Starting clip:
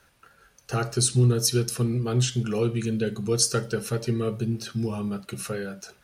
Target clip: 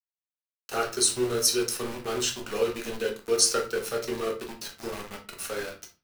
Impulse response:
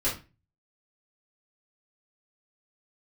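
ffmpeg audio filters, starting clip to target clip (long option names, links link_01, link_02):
-filter_complex "[0:a]highpass=450,aeval=exprs='val(0)*gte(abs(val(0)),0.0188)':channel_layout=same,asplit=2[link_01][link_02];[1:a]atrim=start_sample=2205,adelay=10[link_03];[link_02][link_03]afir=irnorm=-1:irlink=0,volume=-10.5dB[link_04];[link_01][link_04]amix=inputs=2:normalize=0"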